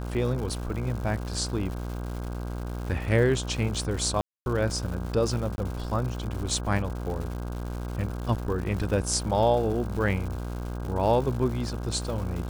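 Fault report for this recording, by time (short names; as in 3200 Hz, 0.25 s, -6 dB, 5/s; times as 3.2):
buzz 60 Hz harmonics 27 -33 dBFS
crackle 270/s -35 dBFS
4.21–4.46 gap 0.251 s
5.56–5.58 gap 21 ms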